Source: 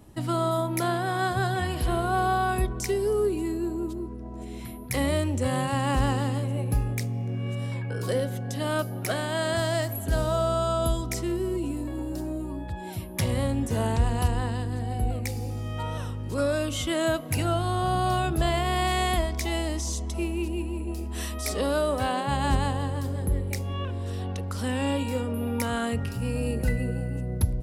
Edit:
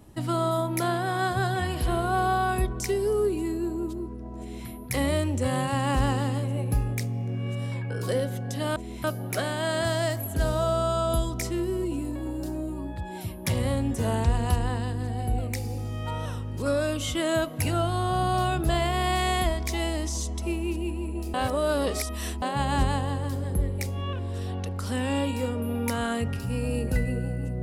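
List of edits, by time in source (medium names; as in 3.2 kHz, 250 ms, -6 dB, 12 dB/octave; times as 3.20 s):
4.39–4.67 s: copy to 8.76 s
21.06–22.14 s: reverse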